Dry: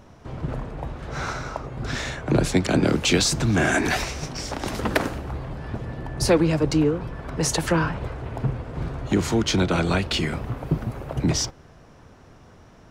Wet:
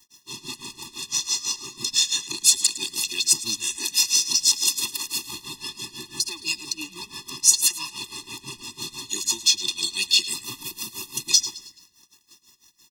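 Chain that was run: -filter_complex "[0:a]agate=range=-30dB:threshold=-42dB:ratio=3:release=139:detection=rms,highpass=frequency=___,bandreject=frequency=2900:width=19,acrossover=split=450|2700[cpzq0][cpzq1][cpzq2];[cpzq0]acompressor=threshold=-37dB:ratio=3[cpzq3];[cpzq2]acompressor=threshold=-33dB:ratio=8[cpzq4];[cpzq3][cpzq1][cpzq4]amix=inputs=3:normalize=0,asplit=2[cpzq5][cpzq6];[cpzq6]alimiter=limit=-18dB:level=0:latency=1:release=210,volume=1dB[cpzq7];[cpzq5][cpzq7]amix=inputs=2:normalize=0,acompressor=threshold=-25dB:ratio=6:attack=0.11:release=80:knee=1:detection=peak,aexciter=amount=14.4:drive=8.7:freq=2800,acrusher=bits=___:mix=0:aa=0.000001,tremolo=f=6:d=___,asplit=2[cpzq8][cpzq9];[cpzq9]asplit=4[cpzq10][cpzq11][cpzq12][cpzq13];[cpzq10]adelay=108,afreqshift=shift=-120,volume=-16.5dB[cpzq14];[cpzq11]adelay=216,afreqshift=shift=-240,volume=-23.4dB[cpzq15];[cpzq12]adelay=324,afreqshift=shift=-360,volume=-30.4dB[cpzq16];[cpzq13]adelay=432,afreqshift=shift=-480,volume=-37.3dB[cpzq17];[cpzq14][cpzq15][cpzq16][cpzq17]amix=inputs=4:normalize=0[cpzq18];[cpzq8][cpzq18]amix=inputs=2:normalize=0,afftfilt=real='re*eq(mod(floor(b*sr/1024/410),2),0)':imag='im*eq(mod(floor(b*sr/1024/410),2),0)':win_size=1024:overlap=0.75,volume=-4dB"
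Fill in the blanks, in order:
320, 7, 1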